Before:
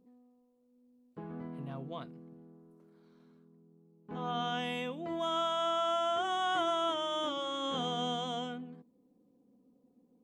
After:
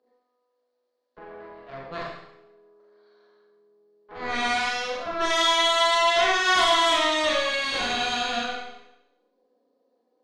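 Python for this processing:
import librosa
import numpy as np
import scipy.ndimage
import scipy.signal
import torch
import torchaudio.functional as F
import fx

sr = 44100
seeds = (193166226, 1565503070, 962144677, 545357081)

y = fx.cabinet(x, sr, low_hz=400.0, low_slope=24, high_hz=5200.0, hz=(640.0, 1100.0, 1700.0, 2600.0, 4400.0), db=(6, 3, 7, -4, 8))
y = fx.cheby_harmonics(y, sr, harmonics=(6,), levels_db=(-7,), full_scale_db=-18.0)
y = fx.rev_schroeder(y, sr, rt60_s=0.82, comb_ms=30, drr_db=-3.5)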